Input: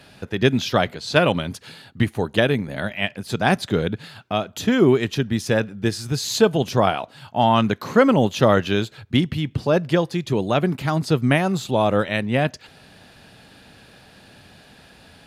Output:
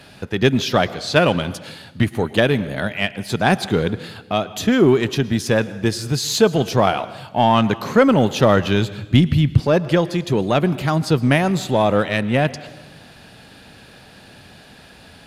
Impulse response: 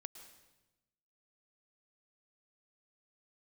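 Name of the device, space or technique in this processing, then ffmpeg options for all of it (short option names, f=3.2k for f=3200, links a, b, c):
saturated reverb return: -filter_complex "[0:a]asplit=2[a][b];[1:a]atrim=start_sample=2205[c];[b][c]afir=irnorm=-1:irlink=0,asoftclip=type=tanh:threshold=-24dB,volume=0.5dB[d];[a][d]amix=inputs=2:normalize=0,asettb=1/sr,asplit=3[e][f][g];[e]atrim=end=8.394[h];[f]atrim=start=8.39:end=9.6,asetpts=PTS-STARTPTS,afade=t=in:d=0.004:c=qsin,afade=t=out:st=1.206:d=0.004:c=qsin,asubboost=boost=7:cutoff=220[i];[g]atrim=start=9.596[j];[h][i]acrossfade=d=0.004:c1=hsin:c2=qsin[k];[k][j]acrossfade=d=0.004:c1=qsin:c2=hsin"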